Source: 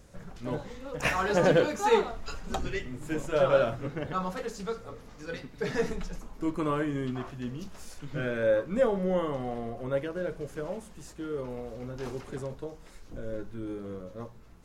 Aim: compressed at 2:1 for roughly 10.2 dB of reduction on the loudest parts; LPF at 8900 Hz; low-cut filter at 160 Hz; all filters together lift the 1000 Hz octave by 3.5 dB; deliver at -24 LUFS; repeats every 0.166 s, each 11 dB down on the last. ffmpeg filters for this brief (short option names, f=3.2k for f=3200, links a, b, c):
-af "highpass=160,lowpass=8.9k,equalizer=f=1k:t=o:g=4.5,acompressor=threshold=-36dB:ratio=2,aecho=1:1:166|332|498:0.282|0.0789|0.0221,volume=13dB"